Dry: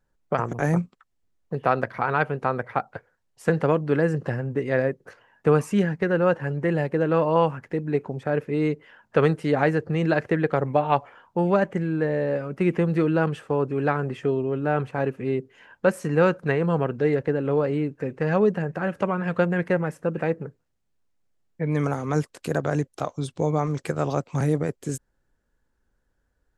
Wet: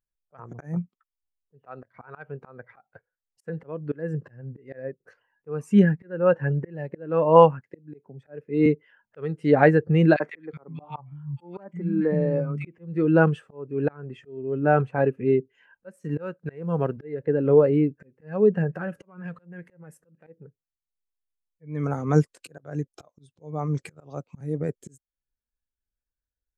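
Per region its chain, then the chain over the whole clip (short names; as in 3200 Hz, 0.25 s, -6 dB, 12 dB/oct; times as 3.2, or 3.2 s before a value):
7.61–8.66 HPF 94 Hz + three-band expander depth 40%
10.16–12.67 comb 0.9 ms, depth 36% + three bands offset in time highs, mids, lows 40/370 ms, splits 190/1800 Hz
15.96–16.97 G.711 law mismatch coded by A + HPF 55 Hz
18.75–20.27 compressor 12:1, threshold -25 dBFS + high shelf 8400 Hz +11.5 dB
whole clip: high shelf 2100 Hz +7.5 dB; auto swell 0.405 s; spectral expander 1.5:1; gain +3 dB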